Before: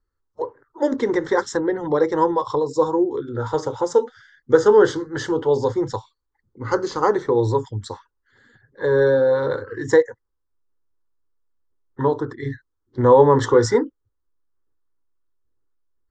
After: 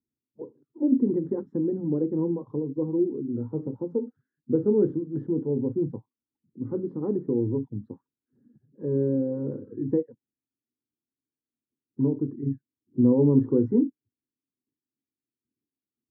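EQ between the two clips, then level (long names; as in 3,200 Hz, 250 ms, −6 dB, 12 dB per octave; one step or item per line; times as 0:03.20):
flat-topped band-pass 210 Hz, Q 1.6
+5.5 dB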